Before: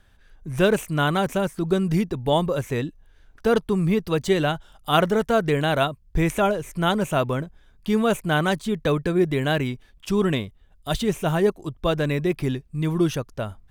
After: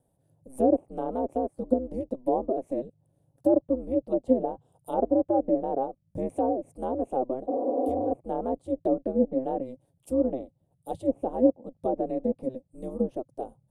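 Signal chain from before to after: resonant low shelf 320 Hz -7 dB, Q 3; treble ducked by the level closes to 1100 Hz, closed at -15.5 dBFS; EQ curve 150 Hz 0 dB, 420 Hz +5 dB, 690 Hz +3 dB, 1500 Hz -24 dB, 2500 Hz -20 dB, 3700 Hz -17 dB, 6000 Hz -12 dB, 9700 Hz +10 dB, 15000 Hz -1 dB; ring modulator 130 Hz; spectral repair 7.51–8.09, 240–1400 Hz after; gain -7 dB

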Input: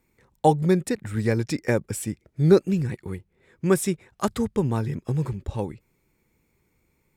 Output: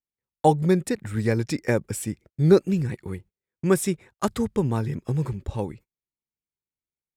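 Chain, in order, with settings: gate -45 dBFS, range -34 dB

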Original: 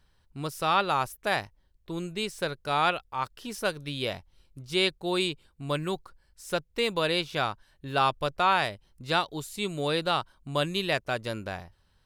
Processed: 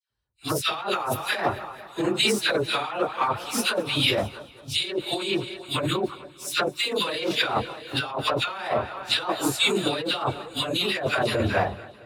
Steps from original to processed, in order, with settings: phase scrambler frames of 50 ms; HPF 73 Hz; low shelf 130 Hz -4 dB; dispersion lows, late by 97 ms, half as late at 1400 Hz; soft clip -12.5 dBFS, distortion -27 dB; multi-head echo 0.22 s, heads all three, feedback 41%, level -23 dB; negative-ratio compressor -33 dBFS, ratio -1; bell 170 Hz -12.5 dB 0.25 oct; three-band expander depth 70%; gain +8.5 dB

